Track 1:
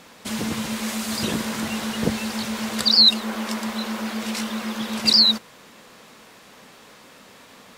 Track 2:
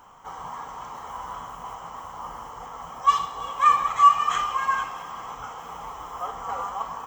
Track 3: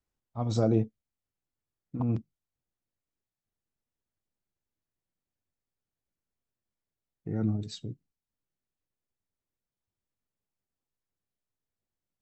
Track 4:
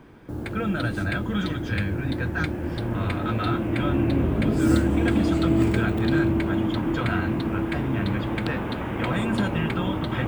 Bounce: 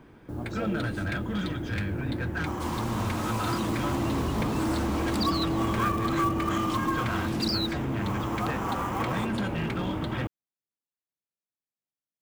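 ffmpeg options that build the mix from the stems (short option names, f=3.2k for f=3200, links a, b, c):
-filter_complex "[0:a]adelay=2350,volume=-11.5dB[a];[1:a]adelay=2200,volume=0dB[b];[2:a]highpass=140,volume=-9dB,asplit=2[c][d];[3:a]asoftclip=type=hard:threshold=-21.5dB,volume=-3.5dB[e];[d]apad=whole_len=408657[f];[b][f]sidechaincompress=threshold=-55dB:ratio=8:attack=16:release=269[g];[a][g]amix=inputs=2:normalize=0,acrusher=bits=4:mode=log:mix=0:aa=0.000001,acompressor=threshold=-28dB:ratio=6,volume=0dB[h];[c][e][h]amix=inputs=3:normalize=0"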